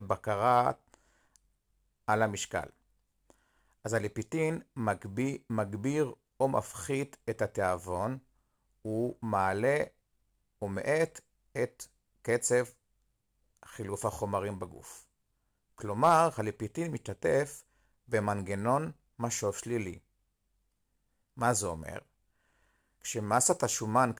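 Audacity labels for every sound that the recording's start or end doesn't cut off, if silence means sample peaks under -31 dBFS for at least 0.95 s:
2.090000	2.640000	sound
3.860000	12.630000	sound
13.800000	14.640000	sound
15.840000	19.900000	sound
21.410000	21.980000	sound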